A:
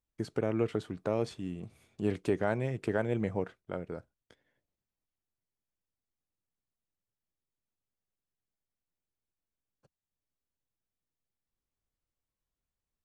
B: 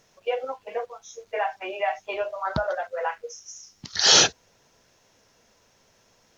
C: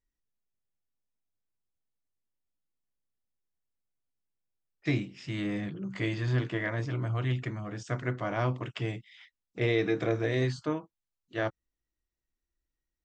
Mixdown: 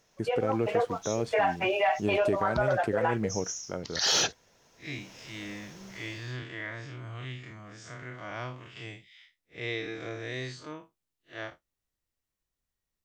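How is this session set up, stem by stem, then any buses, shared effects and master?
+1.5 dB, 0.00 s, no send, dry
-6.5 dB, 0.00 s, no send, AGC gain up to 16.5 dB; soft clip -1.5 dBFS, distortion -25 dB
-3.5 dB, 0.00 s, no send, time blur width 0.103 s; tilt shelf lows -6.5 dB, about 1100 Hz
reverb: off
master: limiter -17 dBFS, peak gain reduction 7 dB

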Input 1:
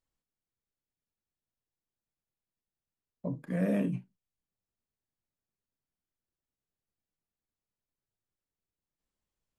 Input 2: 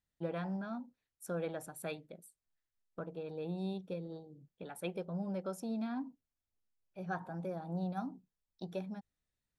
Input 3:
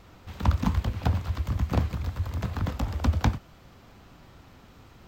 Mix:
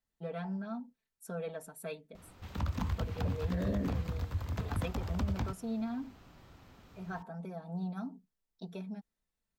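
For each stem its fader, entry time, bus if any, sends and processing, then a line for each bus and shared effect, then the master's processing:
-3.5 dB, 0.00 s, no send, steep low-pass 2100 Hz 96 dB/oct
-4.0 dB, 0.00 s, no send, comb 4.5 ms, depth 99%
-5.5 dB, 2.15 s, no send, dry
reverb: off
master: limiter -24.5 dBFS, peak gain reduction 10 dB

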